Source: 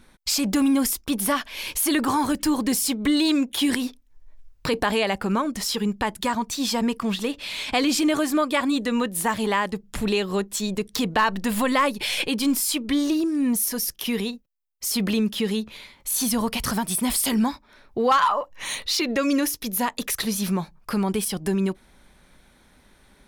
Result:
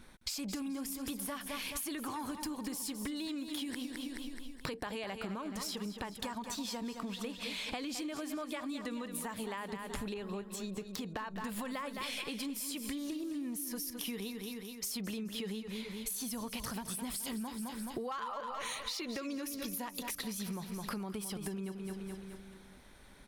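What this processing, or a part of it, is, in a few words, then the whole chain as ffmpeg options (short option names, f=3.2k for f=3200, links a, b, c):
serial compression, leveller first: -filter_complex "[0:a]aecho=1:1:213|426|639|852|1065:0.282|0.141|0.0705|0.0352|0.0176,acompressor=threshold=-24dB:ratio=2.5,acompressor=threshold=-34dB:ratio=10,asettb=1/sr,asplit=3[a][b][c];[a]atrim=end=10.144[d];[b]atrim=start=10.14:end=11.45,asetpts=PTS-STARTPTS,afade=t=in:d=0.004:c=qsin,afade=t=out:st=1.306:d=0.004:c=qsin,adynamicequalizer=threshold=0.002:dfrequency=2500:dqfactor=0.7:tfrequency=2500:tqfactor=0.7:attack=5:release=100:ratio=0.375:range=3.5:mode=cutabove:tftype=highshelf[e];[c]atrim=start=11.446[f];[d][e]acrossfade=d=0.004:c1=hsin:c2=qsin[g];[g][f]acrossfade=d=0.004:c1=qsin:c2=hsin,volume=-2.5dB"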